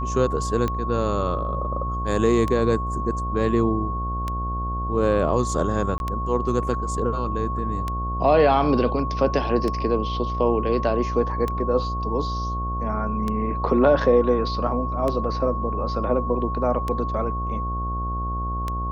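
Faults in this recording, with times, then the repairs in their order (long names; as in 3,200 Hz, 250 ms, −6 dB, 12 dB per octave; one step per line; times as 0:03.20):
mains buzz 60 Hz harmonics 13 −28 dBFS
scratch tick 33 1/3 rpm −13 dBFS
whistle 1,100 Hz −28 dBFS
0:05.98–0:06.00: drop-out 21 ms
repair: click removal
hum removal 60 Hz, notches 13
notch filter 1,100 Hz, Q 30
repair the gap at 0:05.98, 21 ms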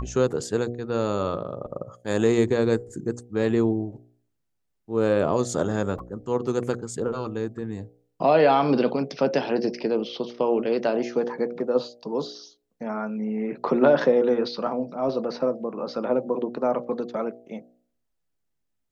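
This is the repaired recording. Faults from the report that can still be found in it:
none of them is left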